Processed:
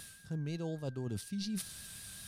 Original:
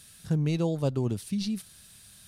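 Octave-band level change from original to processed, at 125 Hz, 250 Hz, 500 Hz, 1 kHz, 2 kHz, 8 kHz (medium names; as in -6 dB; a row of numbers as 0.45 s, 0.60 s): -11.0 dB, -10.0 dB, -11.5 dB, -11.5 dB, -3.5 dB, 0.0 dB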